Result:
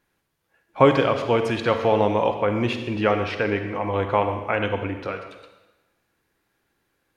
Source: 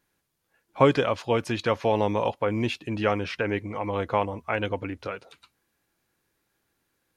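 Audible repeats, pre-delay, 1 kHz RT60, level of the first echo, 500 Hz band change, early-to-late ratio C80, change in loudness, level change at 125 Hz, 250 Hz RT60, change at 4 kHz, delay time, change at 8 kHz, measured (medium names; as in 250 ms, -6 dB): no echo, 30 ms, 1.1 s, no echo, +4.5 dB, 9.0 dB, +4.0 dB, +3.0 dB, 1.1 s, +2.5 dB, no echo, no reading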